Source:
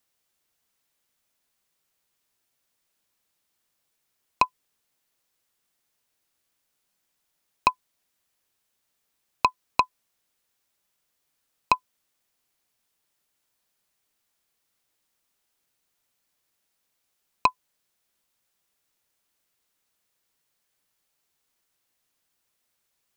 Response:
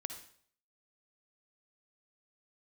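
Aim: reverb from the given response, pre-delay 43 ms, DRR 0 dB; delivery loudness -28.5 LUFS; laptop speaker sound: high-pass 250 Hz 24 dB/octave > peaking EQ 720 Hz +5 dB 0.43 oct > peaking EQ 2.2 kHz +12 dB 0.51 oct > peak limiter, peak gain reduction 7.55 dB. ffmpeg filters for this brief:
-filter_complex "[0:a]asplit=2[s0][s1];[1:a]atrim=start_sample=2205,adelay=43[s2];[s1][s2]afir=irnorm=-1:irlink=0,volume=1.19[s3];[s0][s3]amix=inputs=2:normalize=0,highpass=f=250:w=0.5412,highpass=f=250:w=1.3066,equalizer=f=720:t=o:w=0.43:g=5,equalizer=f=2200:t=o:w=0.51:g=12,volume=0.891,alimiter=limit=0.398:level=0:latency=1"

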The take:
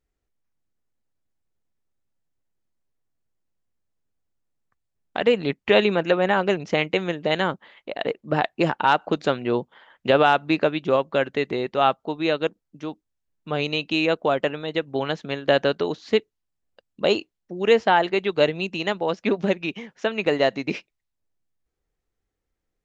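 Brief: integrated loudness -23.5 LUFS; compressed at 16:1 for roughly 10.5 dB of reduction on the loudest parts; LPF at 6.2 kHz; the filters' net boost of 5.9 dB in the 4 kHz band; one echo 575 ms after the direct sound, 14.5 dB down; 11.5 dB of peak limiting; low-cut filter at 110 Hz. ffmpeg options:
-af "highpass=110,lowpass=6200,equalizer=f=4000:t=o:g=8.5,acompressor=threshold=0.0794:ratio=16,alimiter=limit=0.119:level=0:latency=1,aecho=1:1:575:0.188,volume=2.66"

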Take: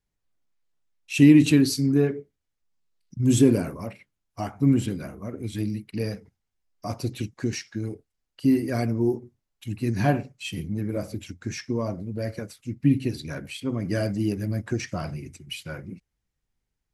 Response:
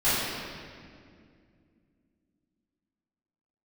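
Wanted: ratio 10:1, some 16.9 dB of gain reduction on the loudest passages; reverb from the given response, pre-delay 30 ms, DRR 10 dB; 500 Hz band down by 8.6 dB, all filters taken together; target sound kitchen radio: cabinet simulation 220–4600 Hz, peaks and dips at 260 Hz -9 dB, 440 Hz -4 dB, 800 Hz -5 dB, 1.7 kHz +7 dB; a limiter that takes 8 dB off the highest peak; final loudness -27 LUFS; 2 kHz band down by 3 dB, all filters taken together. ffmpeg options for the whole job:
-filter_complex "[0:a]equalizer=f=500:t=o:g=-7,equalizer=f=2000:t=o:g=-8,acompressor=threshold=0.0355:ratio=10,alimiter=level_in=1.5:limit=0.0631:level=0:latency=1,volume=0.668,asplit=2[s0][s1];[1:a]atrim=start_sample=2205,adelay=30[s2];[s1][s2]afir=irnorm=-1:irlink=0,volume=0.0501[s3];[s0][s3]amix=inputs=2:normalize=0,highpass=220,equalizer=f=260:t=q:w=4:g=-9,equalizer=f=440:t=q:w=4:g=-4,equalizer=f=800:t=q:w=4:g=-5,equalizer=f=1700:t=q:w=4:g=7,lowpass=f=4600:w=0.5412,lowpass=f=4600:w=1.3066,volume=7.08"

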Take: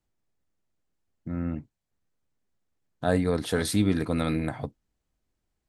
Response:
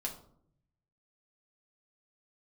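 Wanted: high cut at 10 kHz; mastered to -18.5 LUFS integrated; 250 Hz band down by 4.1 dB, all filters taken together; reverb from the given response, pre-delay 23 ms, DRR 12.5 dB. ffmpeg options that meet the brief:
-filter_complex "[0:a]lowpass=10000,equalizer=f=250:t=o:g=-5.5,asplit=2[s0][s1];[1:a]atrim=start_sample=2205,adelay=23[s2];[s1][s2]afir=irnorm=-1:irlink=0,volume=0.224[s3];[s0][s3]amix=inputs=2:normalize=0,volume=3.76"

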